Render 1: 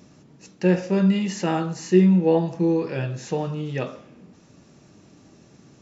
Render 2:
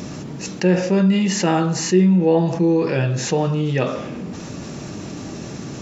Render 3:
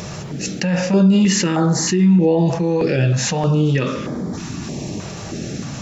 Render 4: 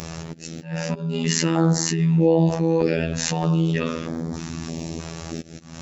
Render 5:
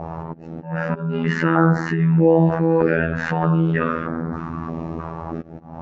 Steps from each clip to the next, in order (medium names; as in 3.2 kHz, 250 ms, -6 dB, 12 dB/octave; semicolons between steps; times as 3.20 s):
level flattener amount 50%
peak limiter -11.5 dBFS, peak gain reduction 6.5 dB; step-sequenced notch 3.2 Hz 270–2700 Hz; trim +5 dB
slow attack 279 ms; robot voice 82 Hz; trim -1.5 dB
touch-sensitive low-pass 700–1500 Hz up, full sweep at -22.5 dBFS; trim +2 dB